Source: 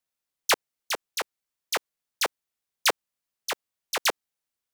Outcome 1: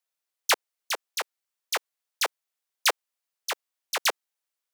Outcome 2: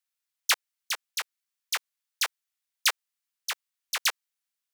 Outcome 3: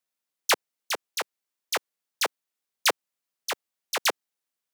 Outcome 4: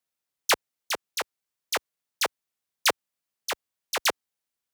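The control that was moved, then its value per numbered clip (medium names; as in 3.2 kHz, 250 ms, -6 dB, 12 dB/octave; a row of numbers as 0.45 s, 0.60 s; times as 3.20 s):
high-pass, cutoff frequency: 460 Hz, 1.3 kHz, 170 Hz, 57 Hz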